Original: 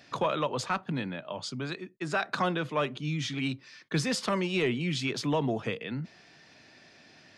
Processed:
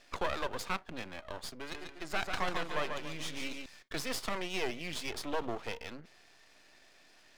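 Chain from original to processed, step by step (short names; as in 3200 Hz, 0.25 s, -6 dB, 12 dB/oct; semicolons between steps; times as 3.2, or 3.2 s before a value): HPF 340 Hz 12 dB/oct; half-wave rectifier; 1.57–3.66 warbling echo 0.143 s, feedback 38%, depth 85 cents, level -5.5 dB; gain -1 dB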